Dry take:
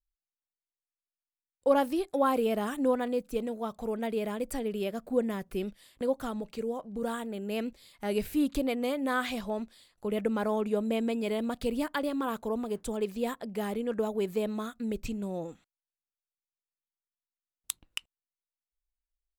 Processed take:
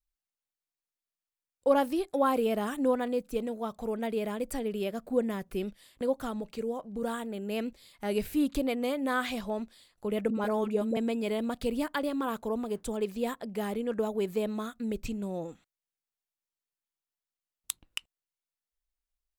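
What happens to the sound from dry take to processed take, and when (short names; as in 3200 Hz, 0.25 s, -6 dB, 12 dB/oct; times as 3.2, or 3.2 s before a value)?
10.3–10.97 dispersion highs, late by 50 ms, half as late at 660 Hz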